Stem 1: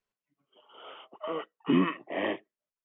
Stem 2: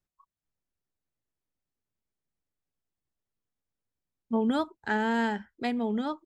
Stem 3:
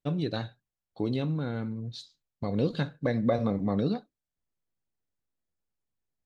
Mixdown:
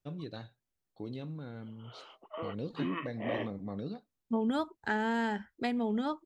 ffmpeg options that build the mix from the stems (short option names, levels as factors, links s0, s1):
-filter_complex "[0:a]acontrast=51,alimiter=limit=0.178:level=0:latency=1:release=51,adelay=1100,volume=0.266[s0];[1:a]acompressor=threshold=0.0355:ratio=2.5,volume=1[s1];[2:a]volume=0.266[s2];[s0][s1][s2]amix=inputs=3:normalize=0"